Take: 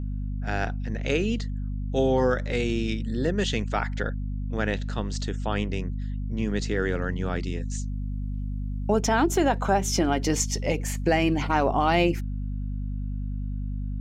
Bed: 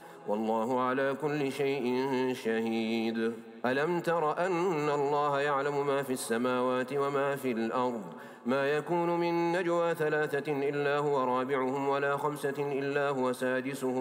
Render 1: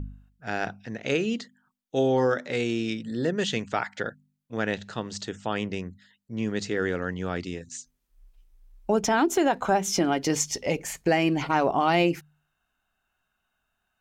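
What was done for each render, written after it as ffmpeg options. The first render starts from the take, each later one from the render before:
-af "bandreject=f=50:t=h:w=4,bandreject=f=100:t=h:w=4,bandreject=f=150:t=h:w=4,bandreject=f=200:t=h:w=4,bandreject=f=250:t=h:w=4"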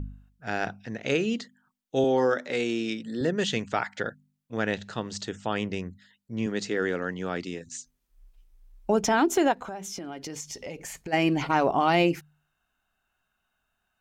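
-filter_complex "[0:a]asettb=1/sr,asplit=3[s0][s1][s2];[s0]atrim=end=2.044[s3];[s1]atrim=start=2.04:end=3.21,asetpts=PTS-STARTPTS,afade=t=in:d=0.004:c=qsin,afade=t=out:st=1.166:d=0.004:c=qsin,highpass=190[s4];[s2]atrim=start=3.206[s5];[s3][s4]acrossfade=d=0.004:c1=hsin:c2=qsin[s6];[s6][s5]acrossfade=d=0.004:c1=qsin:c2=hsin,asettb=1/sr,asplit=3[s7][s8][s9];[s7]atrim=end=6.464[s10];[s8]atrim=start=6.46:end=7.66,asetpts=PTS-STARTPTS,afade=t=in:d=0.004:c=qsin,afade=t=out:st=1.196:d=0.004:c=qsin,highpass=160[s11];[s9]atrim=start=7.656[s12];[s10][s11]acrossfade=d=0.004:c1=hsin:c2=qsin[s13];[s13][s12]acrossfade=d=0.004:c1=qsin:c2=hsin,asplit=3[s14][s15][s16];[s14]afade=t=out:st=9.52:d=0.02[s17];[s15]acompressor=threshold=0.0178:ratio=5:attack=3.2:release=140:knee=1:detection=peak,afade=t=in:st=9.52:d=0.02,afade=t=out:st=11.12:d=0.02[s18];[s16]afade=t=in:st=11.12:d=0.02[s19];[s17][s18][s19]amix=inputs=3:normalize=0"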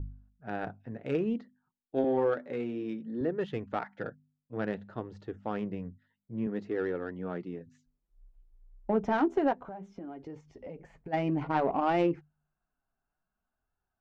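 -af "flanger=delay=2.2:depth=5.3:regen=-42:speed=0.58:shape=sinusoidal,adynamicsmooth=sensitivity=0.5:basefreq=1100"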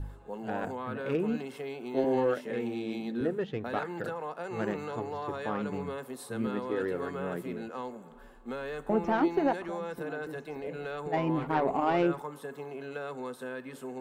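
-filter_complex "[1:a]volume=0.376[s0];[0:a][s0]amix=inputs=2:normalize=0"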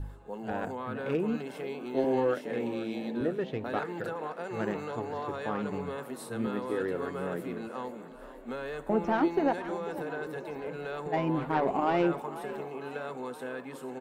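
-filter_complex "[0:a]asplit=7[s0][s1][s2][s3][s4][s5][s6];[s1]adelay=492,afreqshift=39,volume=0.188[s7];[s2]adelay=984,afreqshift=78,volume=0.115[s8];[s3]adelay=1476,afreqshift=117,volume=0.07[s9];[s4]adelay=1968,afreqshift=156,volume=0.0427[s10];[s5]adelay=2460,afreqshift=195,volume=0.026[s11];[s6]adelay=2952,afreqshift=234,volume=0.0158[s12];[s0][s7][s8][s9][s10][s11][s12]amix=inputs=7:normalize=0"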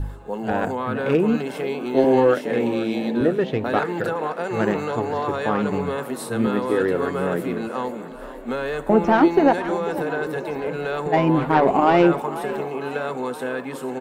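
-af "volume=3.55"

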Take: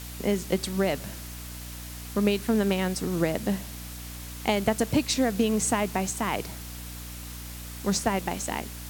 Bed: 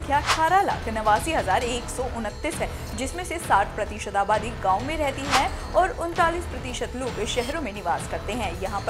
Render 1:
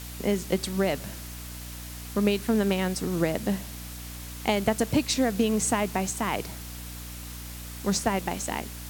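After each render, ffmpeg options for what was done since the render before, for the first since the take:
-af anull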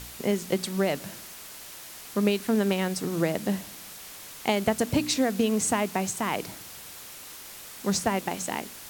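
-af "bandreject=f=60:t=h:w=4,bandreject=f=120:t=h:w=4,bandreject=f=180:t=h:w=4,bandreject=f=240:t=h:w=4,bandreject=f=300:t=h:w=4"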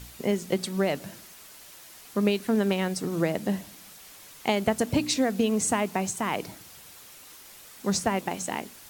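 -af "afftdn=nr=6:nf=-44"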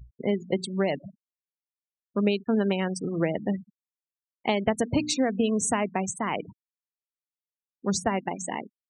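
-af "bandreject=f=5100:w=14,afftfilt=real='re*gte(hypot(re,im),0.0316)':imag='im*gte(hypot(re,im),0.0316)':win_size=1024:overlap=0.75"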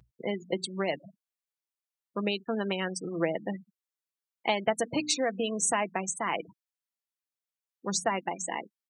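-af "highpass=f=540:p=1,aecho=1:1:6:0.35"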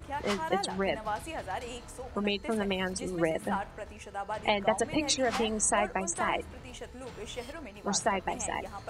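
-filter_complex "[1:a]volume=0.2[s0];[0:a][s0]amix=inputs=2:normalize=0"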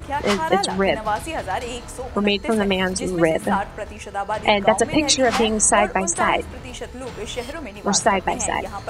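-af "volume=3.55,alimiter=limit=0.891:level=0:latency=1"

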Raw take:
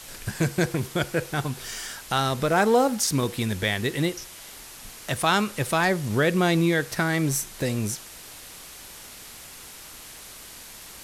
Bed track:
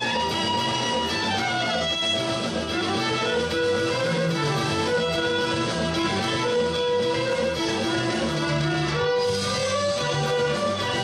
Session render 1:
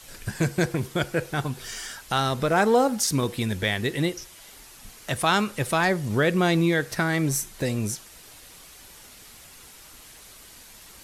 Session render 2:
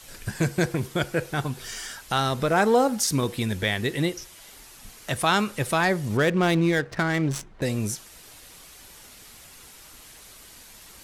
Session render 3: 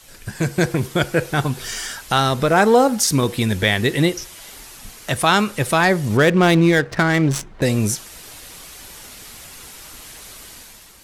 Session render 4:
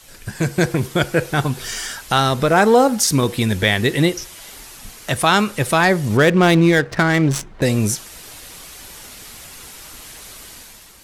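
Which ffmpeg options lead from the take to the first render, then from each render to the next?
-af "afftdn=nr=6:nf=-44"
-filter_complex "[0:a]asettb=1/sr,asplit=3[s0][s1][s2];[s0]atrim=end=6.174[s3];[s1]atrim=start=6.17:end=7.62,asetpts=PTS-STARTPTS,afade=t=in:d=0.004:c=qsin,afade=t=out:st=1.446:d=0.004:c=qsin,adynamicsmooth=sensitivity=5:basefreq=1200[s4];[s2]atrim=start=7.616[s5];[s3][s4]acrossfade=d=0.004:c1=hsin:c2=qsin[s6];[s6][s5]acrossfade=d=0.004:c1=qsin:c2=hsin"
-af "dynaudnorm=f=140:g=7:m=2.66"
-af "volume=1.12,alimiter=limit=0.794:level=0:latency=1"

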